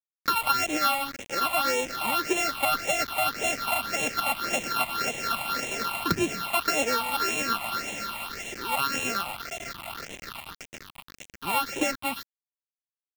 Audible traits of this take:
a buzz of ramps at a fixed pitch in blocks of 32 samples
tremolo triangle 8.4 Hz, depth 35%
a quantiser's noise floor 6 bits, dither none
phaser sweep stages 6, 1.8 Hz, lowest notch 420–1,300 Hz

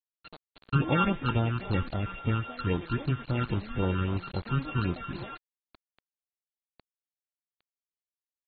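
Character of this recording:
a buzz of ramps at a fixed pitch in blocks of 32 samples
phaser sweep stages 8, 3.7 Hz, lowest notch 590–2,400 Hz
a quantiser's noise floor 8 bits, dither none
AAC

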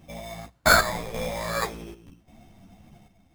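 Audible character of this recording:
aliases and images of a low sample rate 2,900 Hz, jitter 0%
chopped level 0.88 Hz, depth 65%, duty 70%
a shimmering, thickened sound

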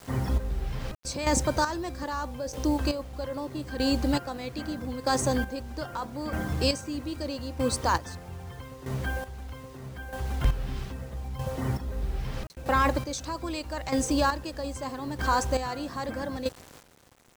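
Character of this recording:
a quantiser's noise floor 8 bits, dither none
chopped level 0.79 Hz, depth 65%, duty 30%

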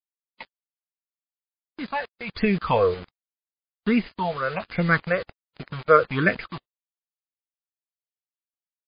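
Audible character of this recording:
chopped level 0.85 Hz, depth 60%, duty 50%
phaser sweep stages 6, 1.3 Hz, lowest notch 220–1,100 Hz
a quantiser's noise floor 6 bits, dither none
MP3

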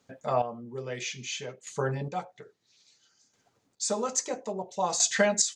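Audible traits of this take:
chopped level 0.6 Hz, depth 65%, duty 25%

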